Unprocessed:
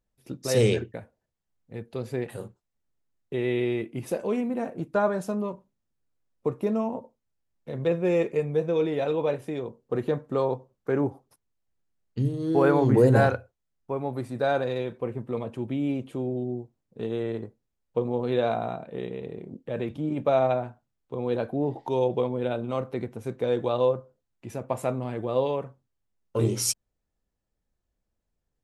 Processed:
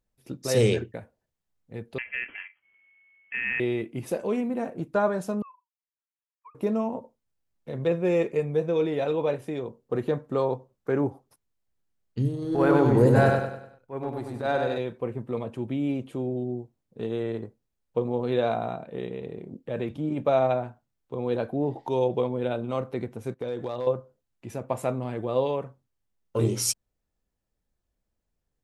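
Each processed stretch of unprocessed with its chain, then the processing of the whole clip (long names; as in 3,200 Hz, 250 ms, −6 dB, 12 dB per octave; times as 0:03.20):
0:01.98–0:03.60: ring modulation 1,000 Hz + upward compression, threshold −47 dBFS + voice inversion scrambler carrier 3,200 Hz
0:05.42–0:06.55: three sine waves on the formant tracks + Butterworth high-pass 890 Hz 48 dB per octave + downward compressor 2.5 to 1, threshold −46 dBFS
0:12.35–0:14.78: transient designer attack −11 dB, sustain −4 dB + repeating echo 98 ms, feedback 41%, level −4 dB
0:23.34–0:23.87: downward compressor 3 to 1, threshold −29 dBFS + noise gate −47 dBFS, range −15 dB + hard clipping −23 dBFS
whole clip: no processing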